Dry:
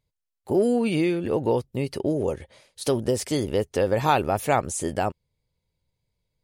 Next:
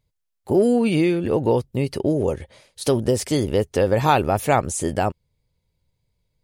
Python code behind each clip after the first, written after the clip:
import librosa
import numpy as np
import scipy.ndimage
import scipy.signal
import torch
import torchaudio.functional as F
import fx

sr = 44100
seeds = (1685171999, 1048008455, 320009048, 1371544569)

y = fx.low_shelf(x, sr, hz=180.0, db=4.0)
y = y * 10.0 ** (3.0 / 20.0)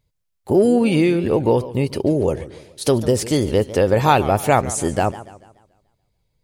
y = fx.echo_warbled(x, sr, ms=144, feedback_pct=44, rate_hz=2.8, cents=197, wet_db=-16)
y = y * 10.0 ** (2.5 / 20.0)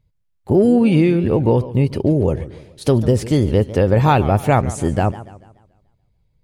y = fx.bass_treble(x, sr, bass_db=8, treble_db=-7)
y = y * 10.0 ** (-1.0 / 20.0)